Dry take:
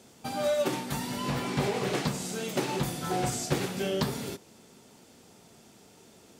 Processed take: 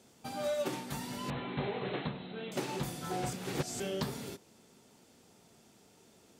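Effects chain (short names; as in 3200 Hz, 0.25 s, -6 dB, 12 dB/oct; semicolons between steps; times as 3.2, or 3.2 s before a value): 1.3–2.52 Chebyshev low-pass 4100 Hz, order 10; 3.33–3.8 reverse; gain -6.5 dB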